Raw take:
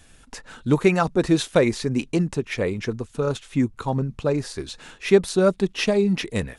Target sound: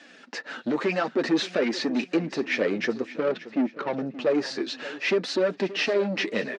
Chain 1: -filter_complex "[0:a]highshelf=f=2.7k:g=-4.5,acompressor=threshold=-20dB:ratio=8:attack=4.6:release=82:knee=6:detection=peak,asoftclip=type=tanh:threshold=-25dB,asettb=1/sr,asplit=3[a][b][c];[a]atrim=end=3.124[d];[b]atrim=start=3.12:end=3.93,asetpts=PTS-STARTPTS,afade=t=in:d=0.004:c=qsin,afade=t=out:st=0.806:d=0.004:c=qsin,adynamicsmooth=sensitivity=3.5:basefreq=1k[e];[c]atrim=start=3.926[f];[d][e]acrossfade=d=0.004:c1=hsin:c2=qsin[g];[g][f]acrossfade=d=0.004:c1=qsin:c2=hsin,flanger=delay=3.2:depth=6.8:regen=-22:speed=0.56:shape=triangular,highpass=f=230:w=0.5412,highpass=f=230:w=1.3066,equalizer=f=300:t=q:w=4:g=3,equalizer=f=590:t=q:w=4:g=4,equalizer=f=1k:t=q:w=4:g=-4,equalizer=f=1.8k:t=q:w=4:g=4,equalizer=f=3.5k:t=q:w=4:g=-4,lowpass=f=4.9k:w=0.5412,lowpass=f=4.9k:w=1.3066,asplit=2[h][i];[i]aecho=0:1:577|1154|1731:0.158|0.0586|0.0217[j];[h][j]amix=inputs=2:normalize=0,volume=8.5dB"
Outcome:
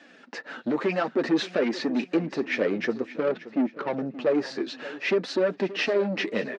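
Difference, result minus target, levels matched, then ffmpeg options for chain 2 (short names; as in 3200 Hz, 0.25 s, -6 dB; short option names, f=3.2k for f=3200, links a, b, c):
4000 Hz band -3.0 dB
-filter_complex "[0:a]highshelf=f=2.7k:g=3.5,acompressor=threshold=-20dB:ratio=8:attack=4.6:release=82:knee=6:detection=peak,asoftclip=type=tanh:threshold=-25dB,asettb=1/sr,asplit=3[a][b][c];[a]atrim=end=3.124[d];[b]atrim=start=3.12:end=3.93,asetpts=PTS-STARTPTS,afade=t=in:d=0.004:c=qsin,afade=t=out:st=0.806:d=0.004:c=qsin,adynamicsmooth=sensitivity=3.5:basefreq=1k[e];[c]atrim=start=3.926[f];[d][e]acrossfade=d=0.004:c1=hsin:c2=qsin[g];[g][f]acrossfade=d=0.004:c1=qsin:c2=hsin,flanger=delay=3.2:depth=6.8:regen=-22:speed=0.56:shape=triangular,highpass=f=230:w=0.5412,highpass=f=230:w=1.3066,equalizer=f=300:t=q:w=4:g=3,equalizer=f=590:t=q:w=4:g=4,equalizer=f=1k:t=q:w=4:g=-4,equalizer=f=1.8k:t=q:w=4:g=4,equalizer=f=3.5k:t=q:w=4:g=-4,lowpass=f=4.9k:w=0.5412,lowpass=f=4.9k:w=1.3066,asplit=2[h][i];[i]aecho=0:1:577|1154|1731:0.158|0.0586|0.0217[j];[h][j]amix=inputs=2:normalize=0,volume=8.5dB"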